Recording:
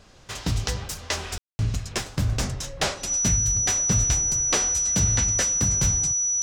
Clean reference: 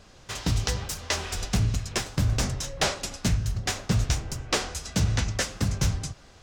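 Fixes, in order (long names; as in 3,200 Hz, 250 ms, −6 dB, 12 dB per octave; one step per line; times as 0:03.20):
notch filter 5,900 Hz, Q 30
ambience match 0:01.38–0:01.59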